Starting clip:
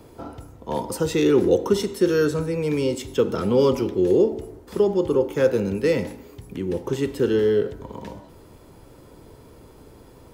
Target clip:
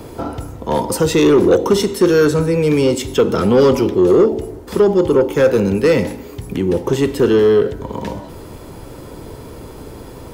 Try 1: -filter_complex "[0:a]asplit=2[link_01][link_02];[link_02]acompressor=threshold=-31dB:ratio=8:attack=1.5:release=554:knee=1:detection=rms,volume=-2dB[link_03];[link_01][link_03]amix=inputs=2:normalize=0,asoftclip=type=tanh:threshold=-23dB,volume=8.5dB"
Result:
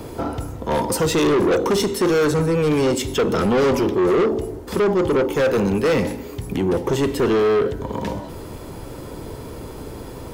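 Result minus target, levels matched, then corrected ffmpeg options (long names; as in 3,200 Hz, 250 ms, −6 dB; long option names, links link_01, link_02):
soft clipping: distortion +9 dB
-filter_complex "[0:a]asplit=2[link_01][link_02];[link_02]acompressor=threshold=-31dB:ratio=8:attack=1.5:release=554:knee=1:detection=rms,volume=-2dB[link_03];[link_01][link_03]amix=inputs=2:normalize=0,asoftclip=type=tanh:threshold=-13.5dB,volume=8.5dB"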